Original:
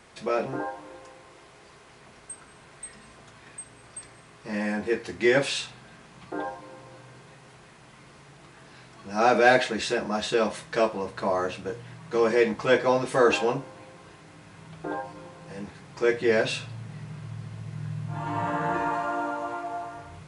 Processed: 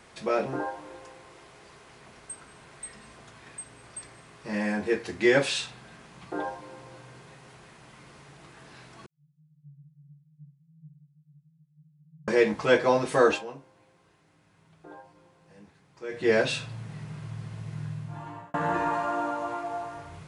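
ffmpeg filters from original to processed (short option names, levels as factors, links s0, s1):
-filter_complex "[0:a]asettb=1/sr,asplit=3[s0][s1][s2];[s0]atrim=end=9.064[s3];[s1]atrim=start=9.06:end=12.28,asetpts=PTS-STARTPTS,afade=t=in:d=0.004:c=qsin,afade=t=out:st=3.216:d=0.004:c=qsin,asuperpass=centerf=150:order=20:qfactor=6.7[s4];[s2]atrim=start=12.276[s5];[s3][s4]acrossfade=d=0.004:c1=hsin:c2=qsin[s6];[s6][s5]acrossfade=d=0.004:c1=qsin:c2=hsin,asplit=4[s7][s8][s9][s10];[s7]atrim=end=13.44,asetpts=PTS-STARTPTS,afade=t=out:st=13.24:d=0.2:silence=0.188365[s11];[s8]atrim=start=13.44:end=16.09,asetpts=PTS-STARTPTS,volume=0.188[s12];[s9]atrim=start=16.09:end=18.54,asetpts=PTS-STARTPTS,afade=t=in:d=0.2:silence=0.188365,afade=t=out:st=1.69:d=0.76[s13];[s10]atrim=start=18.54,asetpts=PTS-STARTPTS,afade=t=in:d=0.004:c=hsin[s14];[s11][s12][s13][s14]concat=n=4:v=0:a=1"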